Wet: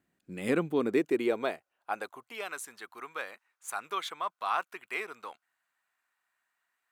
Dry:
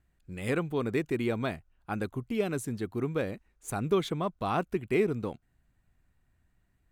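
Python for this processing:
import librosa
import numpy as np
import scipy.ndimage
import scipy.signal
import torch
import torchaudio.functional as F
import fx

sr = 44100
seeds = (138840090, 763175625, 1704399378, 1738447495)

y = fx.filter_sweep_highpass(x, sr, from_hz=230.0, to_hz=1100.0, start_s=0.65, end_s=2.53, q=1.5)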